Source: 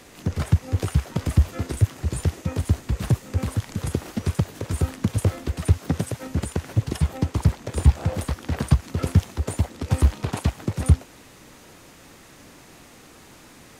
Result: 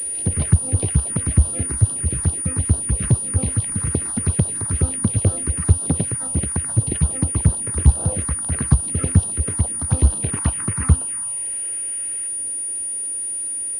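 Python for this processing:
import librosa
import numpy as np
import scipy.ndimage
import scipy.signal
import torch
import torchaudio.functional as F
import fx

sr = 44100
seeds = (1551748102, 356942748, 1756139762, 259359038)

p1 = fx.spec_box(x, sr, start_s=10.41, length_s=1.87, low_hz=880.0, high_hz=3200.0, gain_db=7)
p2 = fx.rider(p1, sr, range_db=10, speed_s=2.0)
p3 = p1 + (p2 * librosa.db_to_amplitude(3.0))
p4 = fx.env_phaser(p3, sr, low_hz=160.0, high_hz=2100.0, full_db=-9.5)
p5 = fx.pwm(p4, sr, carrier_hz=9500.0)
y = p5 * librosa.db_to_amplitude(-5.0)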